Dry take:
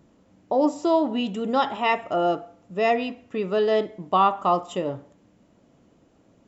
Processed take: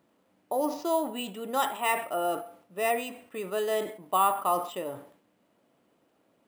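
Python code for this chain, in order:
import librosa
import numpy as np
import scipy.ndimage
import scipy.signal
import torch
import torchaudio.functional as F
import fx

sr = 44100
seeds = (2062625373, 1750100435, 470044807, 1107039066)

y = fx.highpass(x, sr, hz=610.0, slope=6)
y = np.repeat(scipy.signal.resample_poly(y, 1, 4), 4)[:len(y)]
y = fx.sustainer(y, sr, db_per_s=110.0)
y = y * librosa.db_to_amplitude(-3.5)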